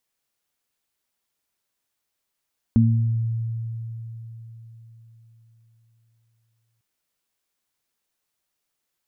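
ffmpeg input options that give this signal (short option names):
-f lavfi -i "aevalsrc='0.188*pow(10,-3*t/4.32)*sin(2*PI*114*t)+0.237*pow(10,-3*t/0.71)*sin(2*PI*228*t)':d=4.05:s=44100"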